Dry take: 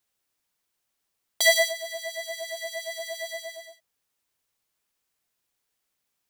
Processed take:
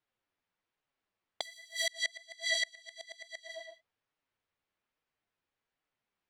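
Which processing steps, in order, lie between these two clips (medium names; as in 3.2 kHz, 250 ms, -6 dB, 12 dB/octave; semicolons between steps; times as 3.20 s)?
level-controlled noise filter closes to 2.6 kHz, open at -25.5 dBFS; 1.41–3.47 s: graphic EQ 1/2/4/8 kHz -7/+10/+9/+9 dB; compression 3:1, threshold -20 dBFS, peak gain reduction 11.5 dB; flange 1.2 Hz, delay 6.2 ms, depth 5.7 ms, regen -23%; inverted gate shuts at -20 dBFS, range -29 dB; trim +1.5 dB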